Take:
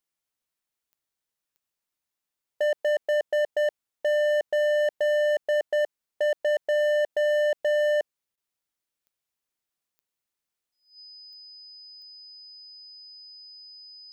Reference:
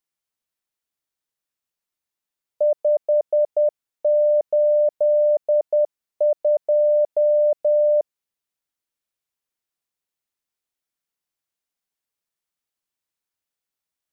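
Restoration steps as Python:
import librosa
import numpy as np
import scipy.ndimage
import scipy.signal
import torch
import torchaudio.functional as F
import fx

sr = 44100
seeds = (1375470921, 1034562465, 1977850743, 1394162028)

y = fx.fix_declip(x, sr, threshold_db=-21.5)
y = fx.fix_declick_ar(y, sr, threshold=10.0)
y = fx.notch(y, sr, hz=5000.0, q=30.0)
y = fx.fix_interpolate(y, sr, at_s=(8.36,), length_ms=12.0)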